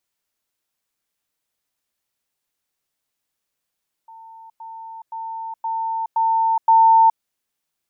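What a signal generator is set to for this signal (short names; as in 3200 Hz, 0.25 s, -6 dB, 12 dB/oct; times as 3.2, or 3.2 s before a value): level ladder 900 Hz -39 dBFS, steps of 6 dB, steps 6, 0.42 s 0.10 s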